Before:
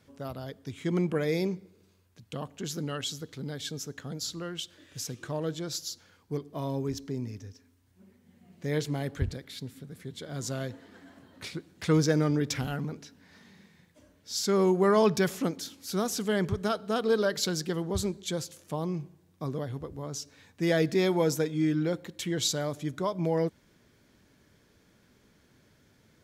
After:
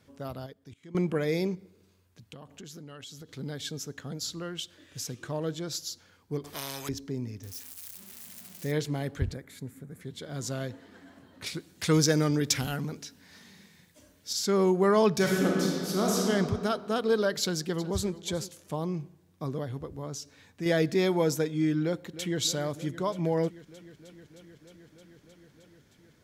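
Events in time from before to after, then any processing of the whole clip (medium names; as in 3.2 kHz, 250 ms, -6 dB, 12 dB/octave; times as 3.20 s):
0.46–0.95 s: level held to a coarse grid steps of 23 dB
1.55–3.29 s: compression, threshold -42 dBFS
6.44–6.89 s: spectrum-flattening compressor 4:1
7.43–8.72 s: zero-crossing glitches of -33 dBFS
9.34–10.01 s: high-order bell 3.9 kHz -11 dB 1.3 oct
11.46–14.33 s: treble shelf 3.4 kHz +10.5 dB
15.12–16.22 s: reverb throw, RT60 2.4 s, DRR -2.5 dB
17.41–18.11 s: echo throw 370 ms, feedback 10%, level -16 dB
20.13–20.66 s: compression 1.5:1, threshold -38 dBFS
21.82–22.40 s: echo throw 310 ms, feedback 85%, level -14.5 dB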